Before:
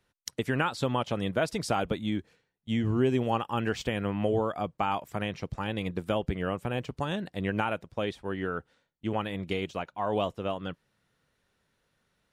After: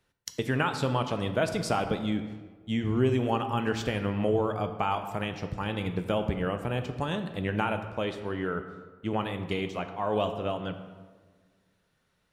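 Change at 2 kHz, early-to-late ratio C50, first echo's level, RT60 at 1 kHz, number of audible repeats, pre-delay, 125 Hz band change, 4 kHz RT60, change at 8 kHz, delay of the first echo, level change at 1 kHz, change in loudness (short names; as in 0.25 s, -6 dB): +0.5 dB, 9.5 dB, none, 1.4 s, none, 3 ms, +2.0 dB, 0.85 s, +0.5 dB, none, +1.0 dB, +1.0 dB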